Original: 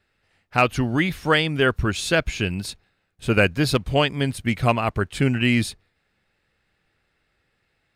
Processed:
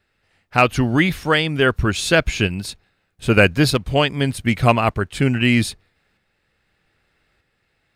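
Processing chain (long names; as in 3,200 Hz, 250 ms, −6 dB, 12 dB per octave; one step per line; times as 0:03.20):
shaped tremolo saw up 0.81 Hz, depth 40%
level +5.5 dB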